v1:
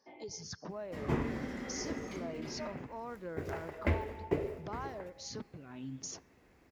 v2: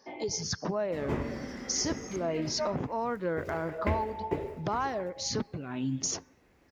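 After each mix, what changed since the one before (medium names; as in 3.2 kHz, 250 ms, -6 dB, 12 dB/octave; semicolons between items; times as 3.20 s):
speech +11.5 dB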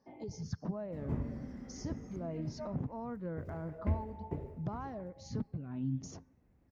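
background: add treble shelf 11 kHz +7 dB; master: add FFT filter 130 Hz 0 dB, 250 Hz -4 dB, 370 Hz -12 dB, 680 Hz -11 dB, 3.1 kHz -21 dB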